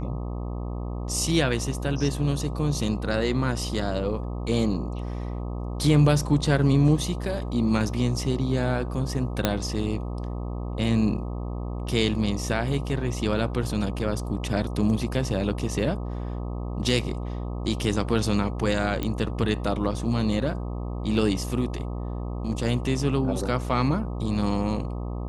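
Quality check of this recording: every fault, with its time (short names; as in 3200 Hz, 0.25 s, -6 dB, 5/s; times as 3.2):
buzz 60 Hz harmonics 21 -31 dBFS
9.45 pop -6 dBFS
19.03 pop -14 dBFS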